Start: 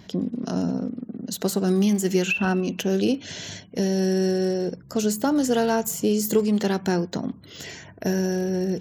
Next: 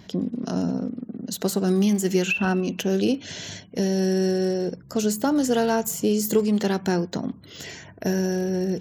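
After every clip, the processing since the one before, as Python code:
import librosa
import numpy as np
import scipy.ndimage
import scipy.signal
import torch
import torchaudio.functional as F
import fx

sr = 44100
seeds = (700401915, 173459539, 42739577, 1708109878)

y = x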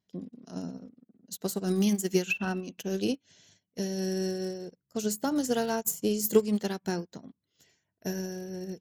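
y = fx.high_shelf(x, sr, hz=5200.0, db=8.5)
y = fx.upward_expand(y, sr, threshold_db=-40.0, expansion=2.5)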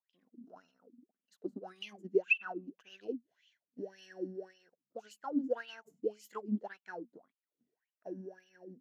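y = fx.wah_lfo(x, sr, hz=1.8, low_hz=230.0, high_hz=3000.0, q=11.0)
y = y * 10.0 ** (3.0 / 20.0)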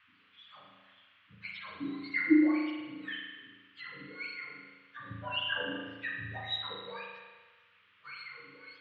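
y = fx.octave_mirror(x, sr, pivot_hz=900.0)
y = fx.rev_spring(y, sr, rt60_s=1.3, pass_ms=(36,), chirp_ms=30, drr_db=-2.0)
y = fx.dmg_noise_band(y, sr, seeds[0], low_hz=1100.0, high_hz=3100.0, level_db=-68.0)
y = y * 10.0 ** (2.0 / 20.0)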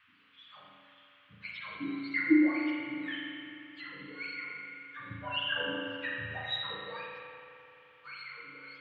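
y = fx.echo_bbd(x, sr, ms=86, stages=2048, feedback_pct=84, wet_db=-9.5)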